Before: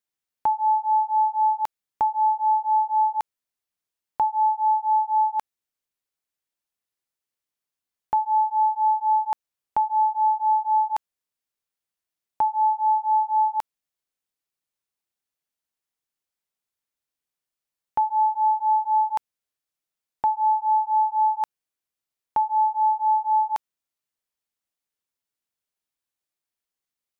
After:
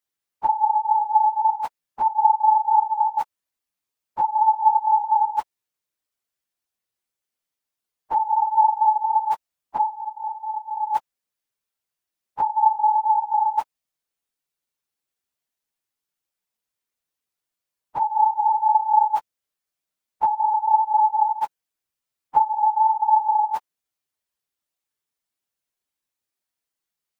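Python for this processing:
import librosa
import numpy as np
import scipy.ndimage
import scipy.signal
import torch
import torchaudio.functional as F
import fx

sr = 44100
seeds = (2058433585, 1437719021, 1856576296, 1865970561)

y = fx.phase_scramble(x, sr, seeds[0], window_ms=50)
y = fx.graphic_eq_10(y, sr, hz=(125, 250, 500, 1000), db=(4, 7, -10, -10), at=(9.91, 10.82), fade=0.02)
y = F.gain(torch.from_numpy(y), 2.0).numpy()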